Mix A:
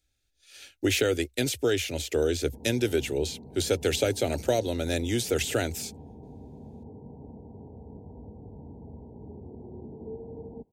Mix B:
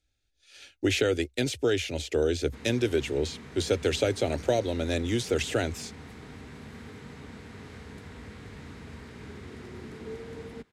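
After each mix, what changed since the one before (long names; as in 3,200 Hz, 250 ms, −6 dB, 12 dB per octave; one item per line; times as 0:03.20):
background: remove Butterworth low-pass 920 Hz 96 dB per octave
master: add high-frequency loss of the air 54 metres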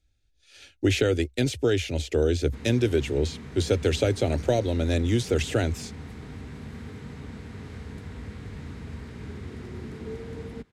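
master: add low-shelf EQ 220 Hz +9 dB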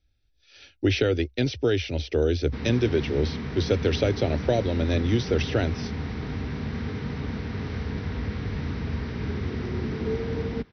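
background +8.5 dB
master: add linear-phase brick-wall low-pass 6,100 Hz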